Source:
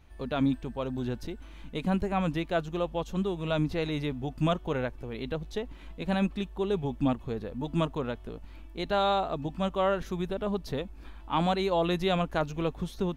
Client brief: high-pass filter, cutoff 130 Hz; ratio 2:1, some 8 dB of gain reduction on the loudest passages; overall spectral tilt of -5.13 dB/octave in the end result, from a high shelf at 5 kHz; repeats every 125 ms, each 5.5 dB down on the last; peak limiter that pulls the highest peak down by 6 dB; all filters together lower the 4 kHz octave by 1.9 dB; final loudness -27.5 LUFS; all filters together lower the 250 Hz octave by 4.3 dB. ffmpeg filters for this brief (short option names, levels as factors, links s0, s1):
-af "highpass=130,equalizer=f=250:t=o:g=-5.5,equalizer=f=4000:t=o:g=-4,highshelf=f=5000:g=4.5,acompressor=threshold=0.0126:ratio=2,alimiter=level_in=1.78:limit=0.0631:level=0:latency=1,volume=0.562,aecho=1:1:125|250|375|500|625|750|875:0.531|0.281|0.149|0.079|0.0419|0.0222|0.0118,volume=3.76"